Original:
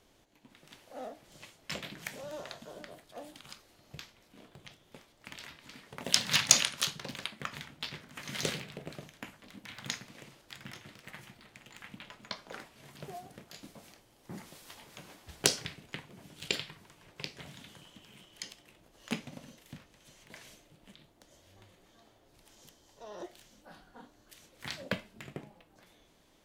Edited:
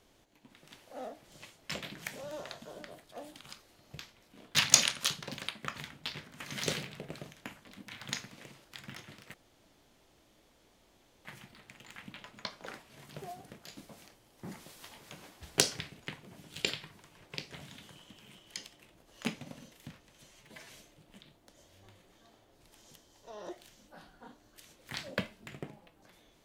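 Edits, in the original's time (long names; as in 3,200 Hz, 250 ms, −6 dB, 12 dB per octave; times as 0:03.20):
0:04.55–0:06.32: remove
0:11.11: splice in room tone 1.91 s
0:20.17–0:20.42: time-stretch 1.5×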